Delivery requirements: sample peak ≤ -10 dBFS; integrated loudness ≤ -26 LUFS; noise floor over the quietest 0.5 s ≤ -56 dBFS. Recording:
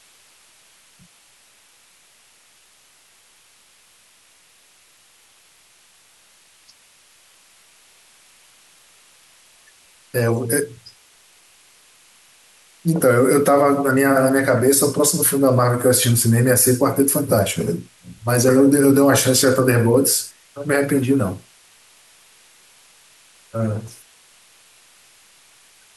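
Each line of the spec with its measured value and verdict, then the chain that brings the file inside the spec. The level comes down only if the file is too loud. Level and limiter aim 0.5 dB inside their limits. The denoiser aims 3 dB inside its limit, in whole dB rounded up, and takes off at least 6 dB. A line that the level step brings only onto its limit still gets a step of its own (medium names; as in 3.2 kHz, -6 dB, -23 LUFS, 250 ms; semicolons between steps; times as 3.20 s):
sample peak -5.0 dBFS: fail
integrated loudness -16.5 LUFS: fail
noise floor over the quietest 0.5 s -54 dBFS: fail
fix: trim -10 dB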